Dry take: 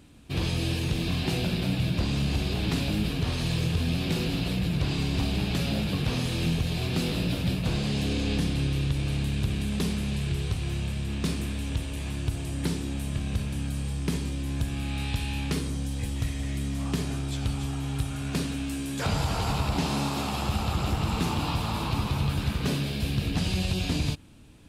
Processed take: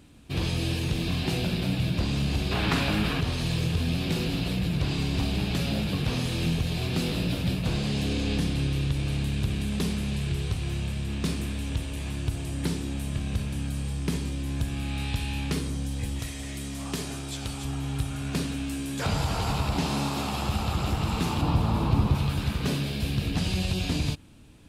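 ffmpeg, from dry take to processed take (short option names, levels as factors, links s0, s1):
-filter_complex "[0:a]asettb=1/sr,asplit=3[s0][s1][s2];[s0]atrim=end=2.514[s3];[s1]atrim=start=2.51:end=3.21,asetpts=PTS-STARTPTS,afade=t=in:d=0.004:c=qsin,afade=t=out:st=0.696:d=0.004:c=qsin,equalizer=f=1300:w=0.68:g=12[s4];[s2]atrim=start=3.206[s5];[s3][s4]acrossfade=d=0.004:c1=hsin:c2=qsin[s6];[s6][s5]acrossfade=d=0.004:c1=qsin:c2=hsin,asettb=1/sr,asplit=3[s7][s8][s9];[s7]atrim=end=16.194[s10];[s8]atrim=start=16.19:end=17.65,asetpts=PTS-STARTPTS,afade=t=in:d=0.004:c=qsin,afade=t=out:st=1.456:d=0.004:c=qsin,bass=f=250:g=-7,treble=f=4000:g=4[s11];[s9]atrim=start=17.646[s12];[s10][s11]acrossfade=d=0.004:c1=hsin:c2=qsin[s13];[s13][s12]acrossfade=d=0.004:c1=qsin:c2=hsin,asettb=1/sr,asplit=3[s14][s15][s16];[s14]atrim=end=21.414[s17];[s15]atrim=start=21.41:end=22.15,asetpts=PTS-STARTPTS,afade=t=in:d=0.004:c=qsin,afade=t=out:st=0.736:d=0.004:c=qsin,tiltshelf=f=1100:g=6[s18];[s16]atrim=start=22.146[s19];[s17][s18]acrossfade=d=0.004:c1=hsin:c2=qsin[s20];[s20][s19]acrossfade=d=0.004:c1=qsin:c2=hsin"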